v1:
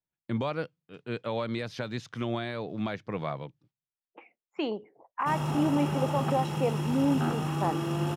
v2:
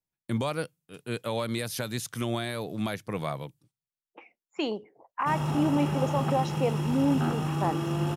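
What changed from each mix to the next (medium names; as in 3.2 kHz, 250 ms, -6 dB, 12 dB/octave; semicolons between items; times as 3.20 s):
speech: remove distance through air 190 m; master: add bass shelf 100 Hz +5.5 dB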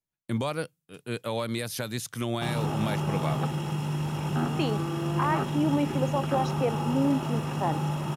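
background: entry -2.85 s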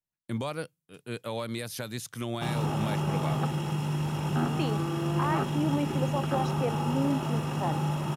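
speech -3.5 dB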